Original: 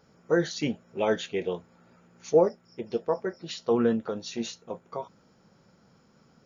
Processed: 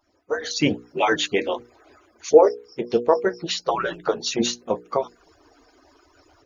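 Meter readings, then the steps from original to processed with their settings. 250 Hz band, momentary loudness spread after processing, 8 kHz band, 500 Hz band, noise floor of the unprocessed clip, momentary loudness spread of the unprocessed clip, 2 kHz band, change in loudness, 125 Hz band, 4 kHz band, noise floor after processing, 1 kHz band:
+3.0 dB, 13 LU, no reading, +6.0 dB, -63 dBFS, 16 LU, +9.5 dB, +6.5 dB, +2.0 dB, +11.5 dB, -61 dBFS, +10.5 dB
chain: harmonic-percussive separation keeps percussive; hum notches 60/120/180/240/300/360/420/480 Hz; level rider gain up to 13 dB

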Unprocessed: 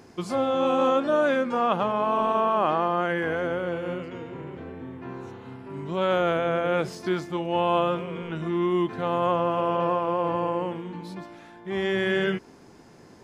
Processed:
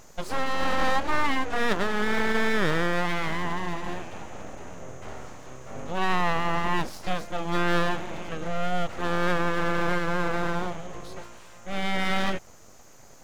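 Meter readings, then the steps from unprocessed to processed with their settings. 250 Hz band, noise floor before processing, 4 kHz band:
-2.5 dB, -50 dBFS, +3.0 dB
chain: whistle 6.5 kHz -56 dBFS; full-wave rectifier; trim +1 dB

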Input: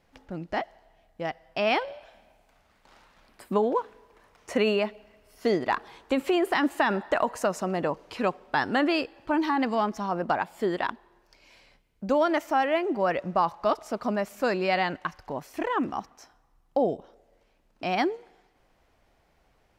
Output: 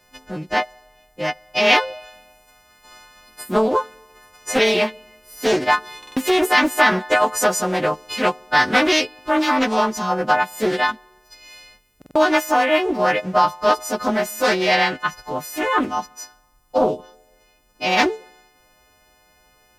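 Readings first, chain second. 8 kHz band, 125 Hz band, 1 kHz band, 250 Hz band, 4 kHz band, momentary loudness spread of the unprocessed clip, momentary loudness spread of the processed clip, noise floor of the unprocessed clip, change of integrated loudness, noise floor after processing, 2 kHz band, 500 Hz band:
+18.5 dB, +5.0 dB, +8.0 dB, +5.0 dB, +13.0 dB, 11 LU, 13 LU, -66 dBFS, +8.0 dB, -58 dBFS, +11.5 dB, +6.5 dB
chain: partials quantised in pitch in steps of 3 st; buffer glitch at 5.98/11.97 s, samples 2048, times 3; loudspeaker Doppler distortion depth 0.35 ms; trim +6.5 dB

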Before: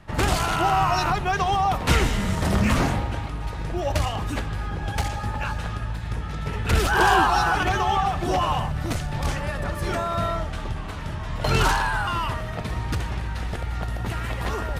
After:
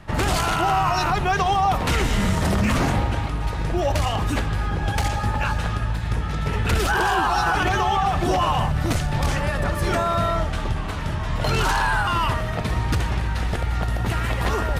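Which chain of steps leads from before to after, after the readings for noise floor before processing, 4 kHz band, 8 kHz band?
-31 dBFS, +1.5 dB, +1.5 dB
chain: peak limiter -17 dBFS, peak gain reduction 10 dB; trim +5 dB

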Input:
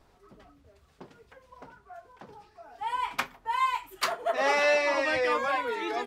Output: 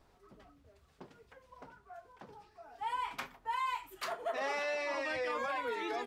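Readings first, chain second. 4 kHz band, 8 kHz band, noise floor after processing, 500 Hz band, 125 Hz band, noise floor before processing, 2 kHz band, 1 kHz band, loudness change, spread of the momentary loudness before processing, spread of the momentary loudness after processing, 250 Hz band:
-9.5 dB, -10.5 dB, -67 dBFS, -9.5 dB, no reading, -63 dBFS, -9.5 dB, -8.0 dB, -9.0 dB, 9 LU, 20 LU, -7.5 dB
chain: peak limiter -23.5 dBFS, peak gain reduction 8.5 dB; trim -4.5 dB

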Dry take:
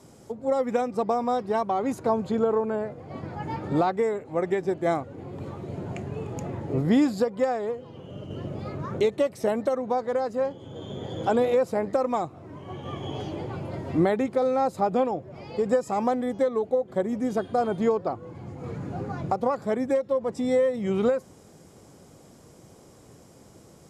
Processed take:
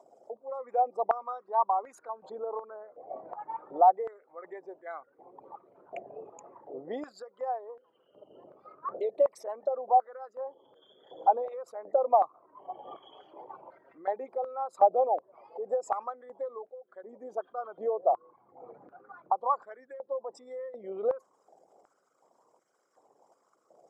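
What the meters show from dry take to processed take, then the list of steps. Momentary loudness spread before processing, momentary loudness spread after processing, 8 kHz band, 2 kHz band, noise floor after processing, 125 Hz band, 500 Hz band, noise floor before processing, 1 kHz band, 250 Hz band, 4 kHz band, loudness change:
13 LU, 21 LU, no reading, under -10 dB, -71 dBFS, under -30 dB, -7.0 dB, -52 dBFS, +1.0 dB, -24.0 dB, under -15 dB, -4.0 dB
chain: resonances exaggerated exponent 2; step-sequenced high-pass 2.7 Hz 690–1500 Hz; trim -4.5 dB

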